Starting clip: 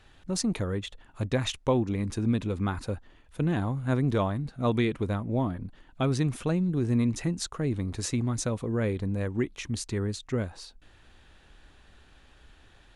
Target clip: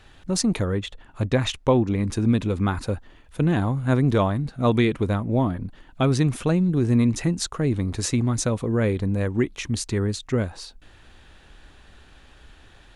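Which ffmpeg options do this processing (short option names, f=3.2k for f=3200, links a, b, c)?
-filter_complex "[0:a]asettb=1/sr,asplit=3[a][b][c];[a]atrim=end=0.654[d];[b]atrim=start=0.65:end=2.08,asetpts=PTS-STARTPTS,afade=t=in:d=0.004:c=qsin,afade=t=out:st=1.426:d=0.004:c=qsin,highshelf=f=5.3k:g=-5.5[e];[c]atrim=start=2.076[f];[d][e]acrossfade=d=0.004:c1=hsin:c2=qsin[g];[g][f]acrossfade=d=0.004:c1=qsin:c2=hsin,volume=6dB"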